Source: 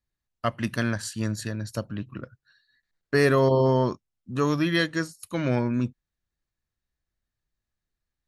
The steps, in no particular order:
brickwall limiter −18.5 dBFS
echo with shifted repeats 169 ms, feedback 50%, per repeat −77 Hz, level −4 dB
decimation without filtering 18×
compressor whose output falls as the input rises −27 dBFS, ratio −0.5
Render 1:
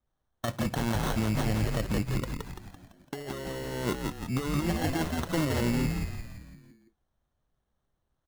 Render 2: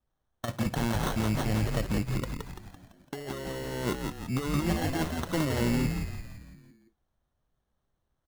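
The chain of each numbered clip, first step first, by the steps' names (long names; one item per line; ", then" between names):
decimation without filtering, then compressor whose output falls as the input rises, then echo with shifted repeats, then brickwall limiter
compressor whose output falls as the input rises, then brickwall limiter, then decimation without filtering, then echo with shifted repeats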